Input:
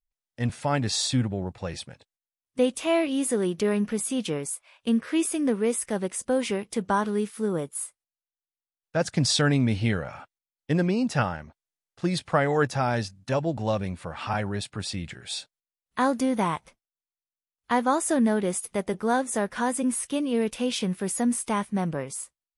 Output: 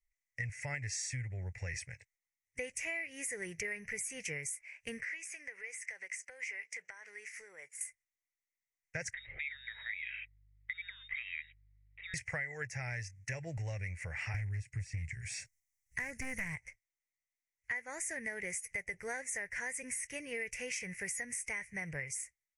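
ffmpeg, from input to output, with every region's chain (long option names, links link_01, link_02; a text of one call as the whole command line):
ffmpeg -i in.wav -filter_complex "[0:a]asettb=1/sr,asplit=3[link_01][link_02][link_03];[link_01]atrim=end=5.044[link_04];[link_02]atrim=start=5.04:end=7.81,asetpts=PTS-STARTPTS,afade=type=in:duration=0.004:curve=qsin,afade=type=out:start_time=2.766:duration=0.004:curve=qsin,highpass=690,lowpass=7000,acompressor=threshold=-41dB:ratio=5:attack=3.2:release=140:knee=1:detection=peak[link_05];[link_03]atrim=start=7.806[link_06];[link_04][link_05]acrossfade=duration=0.004:curve1=hsin:curve2=qsin[link_07];[link_07][link_06]acrossfade=duration=0.004:curve1=qsin:curve2=hsin,asettb=1/sr,asplit=3[link_08][link_09][link_10];[link_08]atrim=end=9.134[link_11];[link_09]atrim=start=9.13:end=12.14,asetpts=PTS-STARTPTS,afade=type=in:duration=0.004:curve=qsin,afade=type=out:start_time=3.006:duration=0.004:curve=qsin,acompressor=threshold=-30dB:ratio=10:attack=3.2:release=140:knee=1:detection=peak,lowpass=frequency=3300:width_type=q:width=0.5098,lowpass=frequency=3300:width_type=q:width=0.6013,lowpass=frequency=3300:width_type=q:width=0.9,lowpass=frequency=3300:width_type=q:width=2.563,afreqshift=-3900,aeval=exprs='val(0)+0.000562*(sin(2*PI*50*n/s)+sin(2*PI*2*50*n/s)/2+sin(2*PI*3*50*n/s)/3+sin(2*PI*4*50*n/s)/4+sin(2*PI*5*50*n/s)/5)':channel_layout=same[link_12];[link_10]atrim=start=12.136[link_13];[link_11][link_12]acrossfade=duration=0.004:curve1=hsin:curve2=qsin[link_14];[link_14][link_13]acrossfade=duration=0.004:curve1=qsin:curve2=hsin,asettb=1/sr,asplit=3[link_15][link_16][link_17];[link_15]atrim=end=14.344[link_18];[link_16]atrim=start=14.34:end=16.56,asetpts=PTS-STARTPTS,afade=type=in:duration=0.004:curve=qsin,afade=type=out:start_time=2.216:duration=0.004:curve=qsin,bass=frequency=250:gain=14,treble=frequency=4000:gain=11,aeval=exprs='0.188*(abs(mod(val(0)/0.188+3,4)-2)-1)':channel_layout=same,acrossover=split=3200[link_19][link_20];[link_20]acompressor=threshold=-41dB:ratio=4:attack=1:release=60[link_21];[link_19][link_21]amix=inputs=2:normalize=0[link_22];[link_17]atrim=start=16.556[link_23];[link_18][link_22]acrossfade=duration=0.004:curve1=hsin:curve2=qsin[link_24];[link_24][link_23]acrossfade=duration=0.004:curve1=qsin:curve2=hsin,firequalizer=gain_entry='entry(110,0);entry(220,-26);entry(450,-13);entry(670,-15);entry(1200,-21);entry(2000,14);entry(3500,-25);entry(5800,3);entry(10000,-5)':delay=0.05:min_phase=1,acompressor=threshold=-37dB:ratio=10,volume=1dB" out.wav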